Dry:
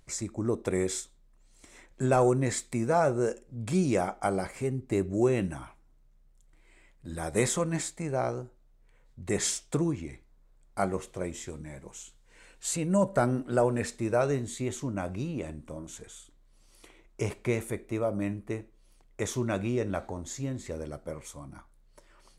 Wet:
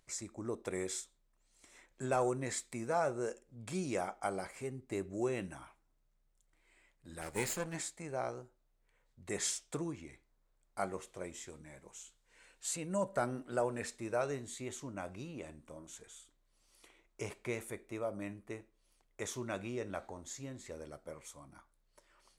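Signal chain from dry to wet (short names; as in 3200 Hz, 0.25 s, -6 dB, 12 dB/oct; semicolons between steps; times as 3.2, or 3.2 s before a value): 7.21–7.75 minimum comb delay 0.43 ms; low shelf 350 Hz -9 dB; gain -6 dB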